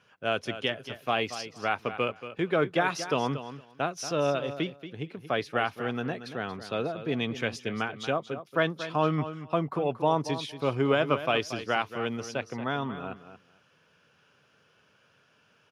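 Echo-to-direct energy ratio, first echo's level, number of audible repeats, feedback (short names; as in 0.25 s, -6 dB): -12.0 dB, -12.0 dB, 2, 16%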